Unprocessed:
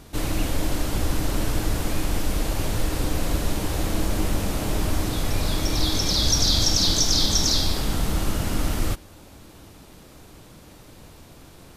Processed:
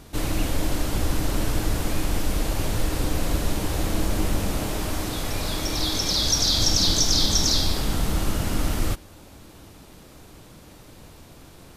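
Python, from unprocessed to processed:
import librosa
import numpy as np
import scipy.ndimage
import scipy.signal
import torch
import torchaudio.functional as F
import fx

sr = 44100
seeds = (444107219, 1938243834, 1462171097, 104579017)

y = fx.low_shelf(x, sr, hz=250.0, db=-5.5, at=(4.66, 6.59))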